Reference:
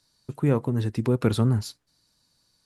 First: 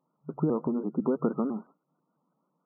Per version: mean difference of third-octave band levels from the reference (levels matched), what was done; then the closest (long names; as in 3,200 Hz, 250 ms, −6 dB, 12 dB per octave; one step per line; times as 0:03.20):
10.0 dB: downward compressor, threshold −22 dBFS, peak gain reduction 7.5 dB
brick-wall band-pass 140–1,400 Hz
pitch modulation by a square or saw wave saw up 6 Hz, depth 160 cents
level +2 dB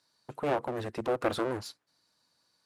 7.5 dB: wavefolder on the positive side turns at −25.5 dBFS
high-pass filter 700 Hz 6 dB per octave
high-shelf EQ 3,000 Hz −12 dB
level +3.5 dB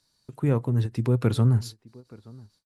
3.0 dB: slap from a distant wall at 150 metres, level −21 dB
dynamic equaliser 120 Hz, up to +7 dB, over −38 dBFS, Q 5
every ending faded ahead of time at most 380 dB per second
level −2.5 dB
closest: third